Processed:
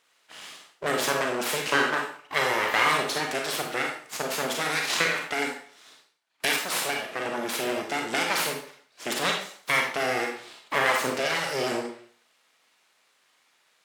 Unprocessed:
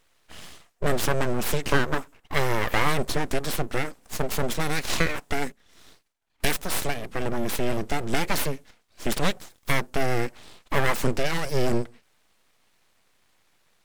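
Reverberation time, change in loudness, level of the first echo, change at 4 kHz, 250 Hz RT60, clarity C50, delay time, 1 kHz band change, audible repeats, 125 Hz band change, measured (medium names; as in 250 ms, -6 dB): 0.50 s, +1.0 dB, no echo, +4.0 dB, 0.45 s, 4.0 dB, no echo, +2.0 dB, no echo, -13.0 dB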